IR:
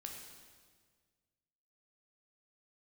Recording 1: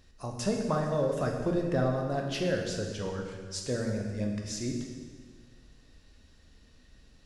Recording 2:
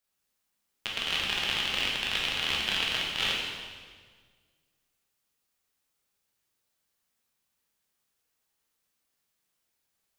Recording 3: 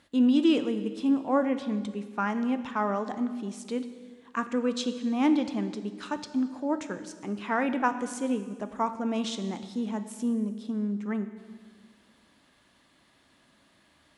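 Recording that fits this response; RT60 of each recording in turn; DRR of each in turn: 1; 1.7, 1.7, 1.7 s; 1.0, -4.0, 9.5 dB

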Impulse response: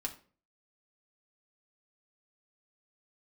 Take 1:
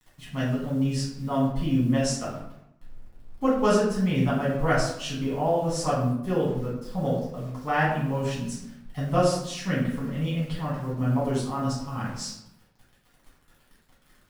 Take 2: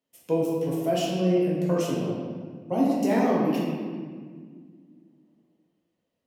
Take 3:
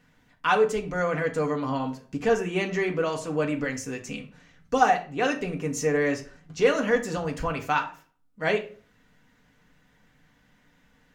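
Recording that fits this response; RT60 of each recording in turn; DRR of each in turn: 3; 0.80, 1.8, 0.40 s; -8.0, -6.0, 1.0 dB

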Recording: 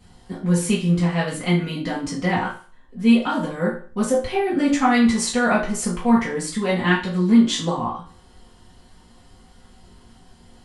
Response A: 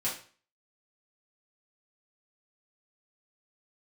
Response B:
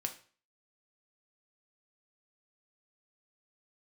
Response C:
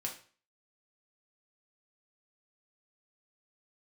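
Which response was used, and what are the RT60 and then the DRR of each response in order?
A; 0.40, 0.40, 0.40 s; -8.0, 4.0, -0.5 dB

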